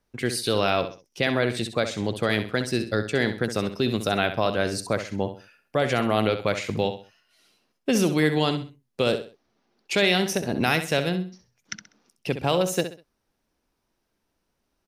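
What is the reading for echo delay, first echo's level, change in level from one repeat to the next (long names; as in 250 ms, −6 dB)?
65 ms, −10.0 dB, −10.5 dB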